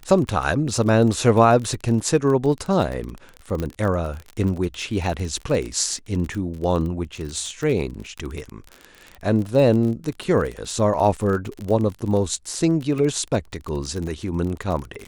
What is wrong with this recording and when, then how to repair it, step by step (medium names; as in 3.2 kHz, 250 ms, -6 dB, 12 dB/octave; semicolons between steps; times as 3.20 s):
crackle 31 per s -26 dBFS
3.60 s: pop -14 dBFS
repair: de-click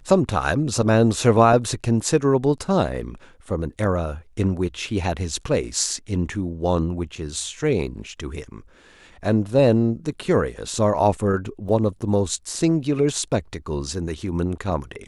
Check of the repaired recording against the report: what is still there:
nothing left